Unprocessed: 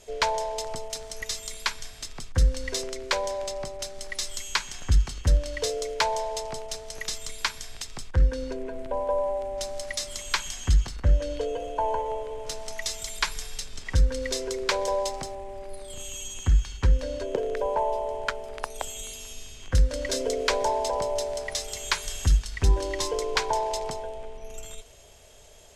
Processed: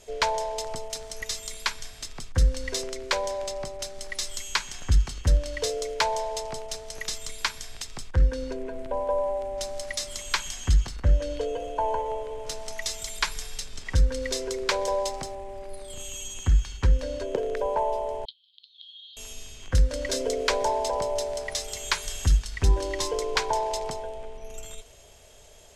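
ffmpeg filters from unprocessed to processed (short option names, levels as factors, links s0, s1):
-filter_complex "[0:a]asettb=1/sr,asplit=3[s0][s1][s2];[s0]atrim=end=18.254[s3];[s1]atrim=start=18.25:end=19.17,asetpts=PTS-STARTPTS,afade=t=in:d=0.004:c=qsin,afade=t=out:st=0.916:d=0.004:c=qsin,asuperpass=centerf=3700:order=8:qfactor=3[s4];[s2]atrim=start=19.166[s5];[s3][s4]acrossfade=d=0.004:c1=hsin:c2=qsin[s6];[s6][s5]acrossfade=d=0.004:c1=qsin:c2=hsin"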